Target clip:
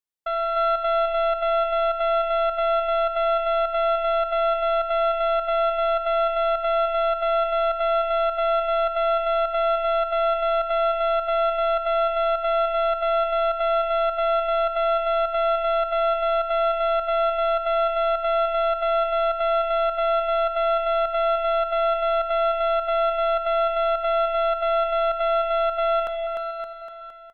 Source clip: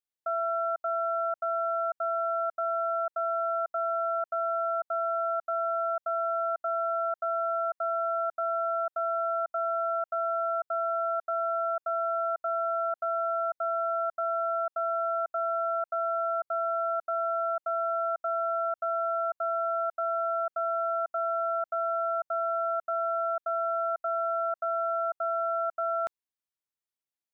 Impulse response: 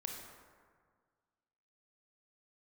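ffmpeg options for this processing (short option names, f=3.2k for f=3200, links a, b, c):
-filter_complex "[0:a]aeval=exprs='0.075*(cos(1*acos(clip(val(0)/0.075,-1,1)))-cos(1*PI/2))+0.0119*(cos(3*acos(clip(val(0)/0.075,-1,1)))-cos(3*PI/2))':c=same,aecho=1:1:300|570|813|1032|1229:0.631|0.398|0.251|0.158|0.1,asplit=2[a][b];[1:a]atrim=start_sample=2205[c];[b][c]afir=irnorm=-1:irlink=0,volume=-4dB[d];[a][d]amix=inputs=2:normalize=0,volume=2dB"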